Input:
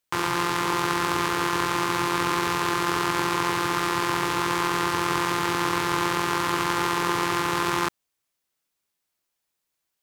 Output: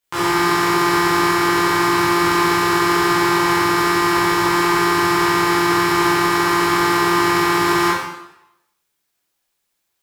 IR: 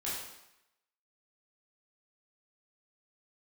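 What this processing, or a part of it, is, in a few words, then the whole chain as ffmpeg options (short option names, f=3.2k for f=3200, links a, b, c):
bathroom: -filter_complex "[1:a]atrim=start_sample=2205[a];[0:a][a]afir=irnorm=-1:irlink=0,volume=4.5dB"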